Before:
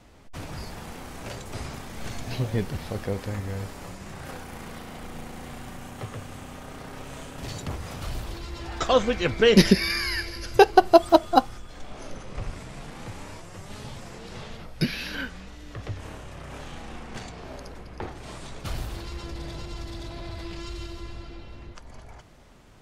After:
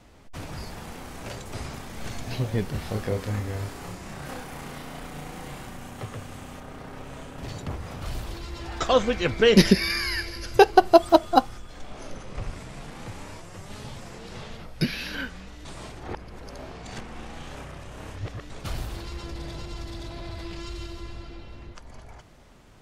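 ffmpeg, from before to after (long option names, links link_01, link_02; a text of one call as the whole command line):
ffmpeg -i in.wav -filter_complex "[0:a]asettb=1/sr,asplit=3[link_01][link_02][link_03];[link_01]atrim=end=2.714[link_04];[link_02]atrim=start=2.71:end=5.67,asetpts=PTS-STARTPTS,afade=type=in:duration=0.004:curve=qsin,afade=type=out:start_time=2.956:duration=0.004:curve=qsin,asplit=2[link_05][link_06];[link_06]adelay=28,volume=-3dB[link_07];[link_05][link_07]amix=inputs=2:normalize=0,atrim=end_sample=130536[link_08];[link_03]atrim=start=5.666[link_09];[link_04][link_08]acrossfade=duration=0.004:curve1=hsin:curve2=qsin[link_10];[link_10][link_09]acrossfade=duration=0.004:curve1=qsin:curve2=hsin,asettb=1/sr,asplit=3[link_11][link_12][link_13];[link_11]atrim=end=6.604[link_14];[link_12]atrim=start=6.6:end=8.06,asetpts=PTS-STARTPTS,afade=type=in:duration=0.004:curve=qsin,afade=type=out:start_time=1.456:duration=0.004:curve=qsin,equalizer=frequency=12000:width_type=o:width=2.8:gain=-6.5[link_15];[link_13]atrim=start=8.056[link_16];[link_14][link_15]acrossfade=duration=0.004:curve1=hsin:curve2=qsin[link_17];[link_17][link_16]acrossfade=duration=0.004:curve1=qsin:curve2=hsin,asplit=3[link_18][link_19][link_20];[link_18]atrim=end=15.652[link_21];[link_19]atrim=start=15.648:end=18.502,asetpts=PTS-STARTPTS,areverse[link_22];[link_20]atrim=start=18.498[link_23];[link_21][link_22]acrossfade=duration=0.004:curve1=hsin:curve2=hsin[link_24];[link_24][link_23]acrossfade=duration=0.004:curve1=hsin:curve2=hsin" out.wav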